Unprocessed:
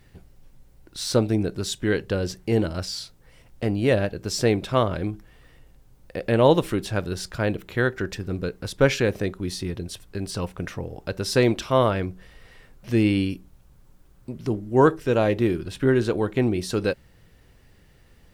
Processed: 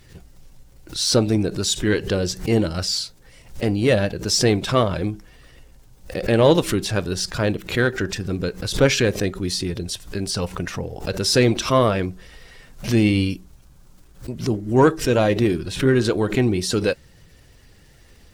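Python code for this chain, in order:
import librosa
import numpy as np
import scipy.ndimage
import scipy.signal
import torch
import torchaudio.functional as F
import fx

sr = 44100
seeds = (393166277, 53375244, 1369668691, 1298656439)

p1 = fx.spec_quant(x, sr, step_db=15)
p2 = fx.peak_eq(p1, sr, hz=6100.0, db=6.5, octaves=1.8)
p3 = 10.0 ** (-16.5 / 20.0) * np.tanh(p2 / 10.0 ** (-16.5 / 20.0))
p4 = p2 + (p3 * 10.0 ** (-5.0 / 20.0))
p5 = fx.dmg_crackle(p4, sr, seeds[0], per_s=52.0, level_db=-49.0)
y = fx.pre_swell(p5, sr, db_per_s=150.0)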